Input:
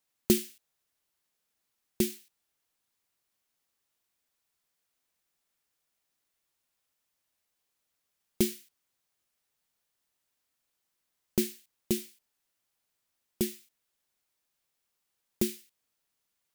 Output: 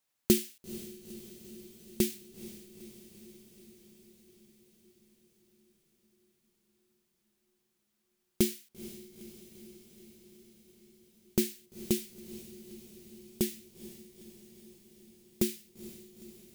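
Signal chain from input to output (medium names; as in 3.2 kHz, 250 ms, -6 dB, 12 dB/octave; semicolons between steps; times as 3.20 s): dynamic bell 1 kHz, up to -5 dB, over -53 dBFS, Q 1.5; on a send: echo that smears into a reverb 463 ms, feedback 69%, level -15 dB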